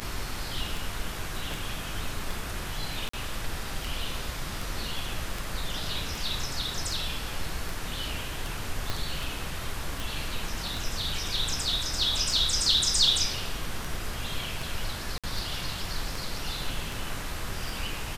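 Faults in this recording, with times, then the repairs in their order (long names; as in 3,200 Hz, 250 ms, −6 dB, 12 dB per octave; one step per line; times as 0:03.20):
scratch tick 78 rpm −19 dBFS
0:03.09–0:03.13: drop-out 44 ms
0:08.90: click −14 dBFS
0:15.18–0:15.24: drop-out 56 ms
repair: click removal
repair the gap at 0:03.09, 44 ms
repair the gap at 0:15.18, 56 ms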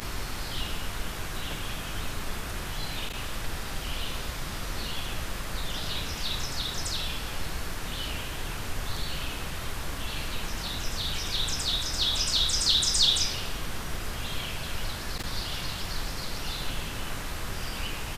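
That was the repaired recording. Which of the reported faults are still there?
0:08.90: click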